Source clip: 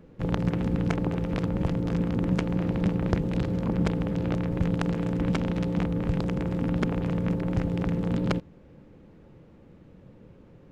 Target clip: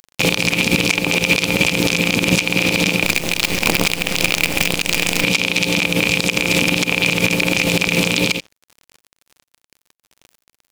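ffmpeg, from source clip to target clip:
-filter_complex "[0:a]aexciter=amount=11.2:drive=3.3:freq=2.4k,aeval=exprs='(tanh(2.51*val(0)+0.3)-tanh(0.3))/2.51':c=same,highpass=f=530:p=1,equalizer=f=2.4k:t=o:w=0.21:g=15,asplit=2[a][b];[b]adelay=75,lowpass=f=830:p=1,volume=-17dB,asplit=2[c][d];[d]adelay=75,lowpass=f=830:p=1,volume=0.26[e];[a][c][e]amix=inputs=3:normalize=0,aeval=exprs='sgn(val(0))*max(abs(val(0))-0.00562,0)':c=same,acompressor=threshold=-31dB:ratio=12,asettb=1/sr,asplit=3[f][g][h];[f]atrim=end=3.044[i];[g]atrim=start=3.04:end=5.24,asetpts=PTS-STARTPTS,afade=t=in:d=0.004:c=qsin,afade=t=out:st=2.196:d=0.004:c=qsin,acrusher=bits=6:dc=4:mix=0:aa=0.000001[j];[h]atrim=start=5.236[k];[i][j]acrossfade=d=0.004:c1=hsin:c2=qsin[l];[l][k]acrossfade=d=0.004:c1=qsin:c2=hsin,alimiter=level_in=27.5dB:limit=-1dB:release=50:level=0:latency=1,volume=-1dB"

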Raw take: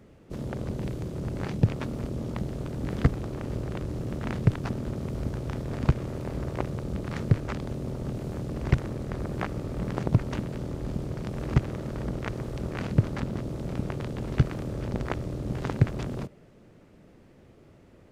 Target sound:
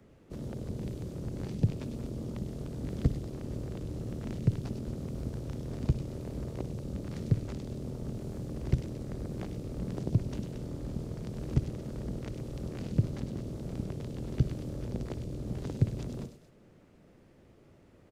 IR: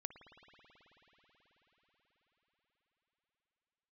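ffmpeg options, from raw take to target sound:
-filter_complex "[0:a]acrossover=split=130|590|3400[a][b][c][d];[c]acompressor=threshold=-51dB:ratio=6[e];[d]aecho=1:1:99.13|227.4:0.631|0.316[f];[a][b][e][f]amix=inputs=4:normalize=0[g];[1:a]atrim=start_sample=2205,atrim=end_sample=6174[h];[g][h]afir=irnorm=-1:irlink=0"

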